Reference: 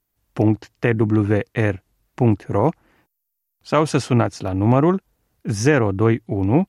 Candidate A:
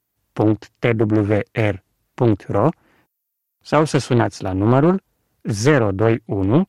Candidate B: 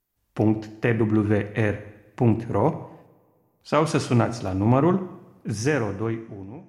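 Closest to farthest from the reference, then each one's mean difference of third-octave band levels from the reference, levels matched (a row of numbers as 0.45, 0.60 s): A, B; 2.0, 4.0 dB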